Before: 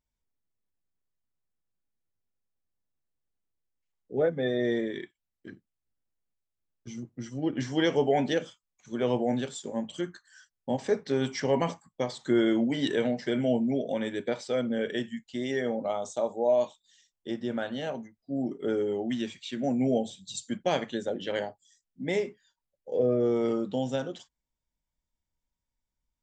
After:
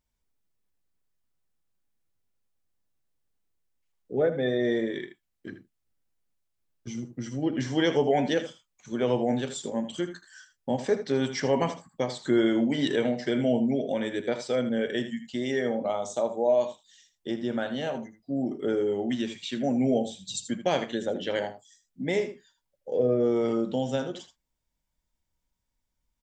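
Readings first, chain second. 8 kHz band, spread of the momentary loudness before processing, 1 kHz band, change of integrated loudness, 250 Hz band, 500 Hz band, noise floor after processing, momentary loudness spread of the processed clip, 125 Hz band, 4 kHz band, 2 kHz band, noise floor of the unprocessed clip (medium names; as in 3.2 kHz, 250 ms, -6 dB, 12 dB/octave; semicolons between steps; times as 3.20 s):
+3.0 dB, 12 LU, +1.5 dB, +1.5 dB, +1.5 dB, +1.5 dB, -80 dBFS, 13 LU, +1.5 dB, +2.0 dB, +2.0 dB, under -85 dBFS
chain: delay 79 ms -12 dB; in parallel at -2.5 dB: compression, threshold -38 dBFS, peak gain reduction 17 dB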